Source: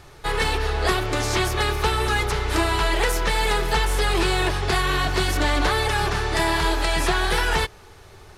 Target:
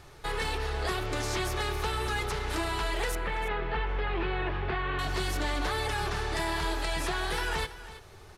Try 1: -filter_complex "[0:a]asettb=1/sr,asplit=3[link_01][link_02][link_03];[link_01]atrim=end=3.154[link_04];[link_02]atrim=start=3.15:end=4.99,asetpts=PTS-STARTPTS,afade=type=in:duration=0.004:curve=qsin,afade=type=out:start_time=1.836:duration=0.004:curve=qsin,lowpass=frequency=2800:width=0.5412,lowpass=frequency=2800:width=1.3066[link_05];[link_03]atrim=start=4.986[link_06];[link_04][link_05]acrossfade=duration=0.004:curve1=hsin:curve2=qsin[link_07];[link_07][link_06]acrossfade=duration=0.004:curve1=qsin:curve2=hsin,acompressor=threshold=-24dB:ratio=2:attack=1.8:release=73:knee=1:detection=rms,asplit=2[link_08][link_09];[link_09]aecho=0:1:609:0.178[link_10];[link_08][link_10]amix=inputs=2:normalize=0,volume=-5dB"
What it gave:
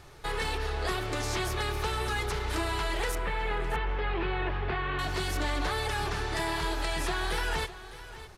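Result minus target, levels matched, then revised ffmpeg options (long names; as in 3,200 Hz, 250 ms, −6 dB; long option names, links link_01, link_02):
echo 279 ms late
-filter_complex "[0:a]asettb=1/sr,asplit=3[link_01][link_02][link_03];[link_01]atrim=end=3.154[link_04];[link_02]atrim=start=3.15:end=4.99,asetpts=PTS-STARTPTS,afade=type=in:duration=0.004:curve=qsin,afade=type=out:start_time=1.836:duration=0.004:curve=qsin,lowpass=frequency=2800:width=0.5412,lowpass=frequency=2800:width=1.3066[link_05];[link_03]atrim=start=4.986[link_06];[link_04][link_05]acrossfade=duration=0.004:curve1=hsin:curve2=qsin[link_07];[link_07][link_06]acrossfade=duration=0.004:curve1=qsin:curve2=hsin,acompressor=threshold=-24dB:ratio=2:attack=1.8:release=73:knee=1:detection=rms,asplit=2[link_08][link_09];[link_09]aecho=0:1:330:0.178[link_10];[link_08][link_10]amix=inputs=2:normalize=0,volume=-5dB"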